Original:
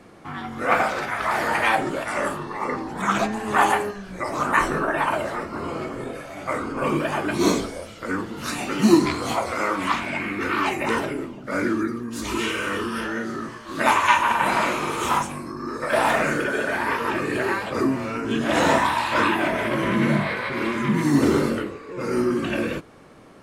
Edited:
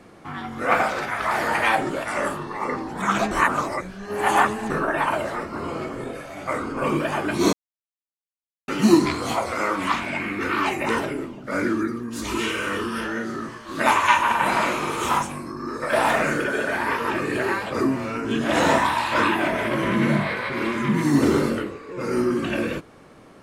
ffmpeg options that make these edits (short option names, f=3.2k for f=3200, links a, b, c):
-filter_complex "[0:a]asplit=5[a][b][c][d][e];[a]atrim=end=3.312[f];[b]atrim=start=3.308:end=4.702,asetpts=PTS-STARTPTS,areverse[g];[c]atrim=start=4.698:end=7.53,asetpts=PTS-STARTPTS,afade=t=out:st=2.828:d=0.004:c=hsin[h];[d]atrim=start=7.53:end=8.68,asetpts=PTS-STARTPTS,volume=0[i];[e]atrim=start=8.68,asetpts=PTS-STARTPTS,afade=t=in:d=0.004:c=hsin[j];[f][g]acrossfade=d=0.004:c1=hsin:c2=hsin[k];[h][i][j]concat=n=3:v=0:a=1[l];[k][l]acrossfade=d=0.004:c1=hsin:c2=hsin"